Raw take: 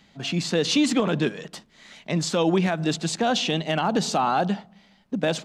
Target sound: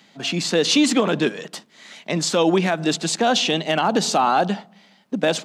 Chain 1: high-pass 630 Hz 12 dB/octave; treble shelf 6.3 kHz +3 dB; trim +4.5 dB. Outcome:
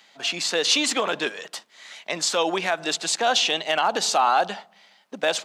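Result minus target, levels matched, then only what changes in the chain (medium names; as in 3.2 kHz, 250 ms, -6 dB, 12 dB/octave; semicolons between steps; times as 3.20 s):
250 Hz band -10.0 dB
change: high-pass 210 Hz 12 dB/octave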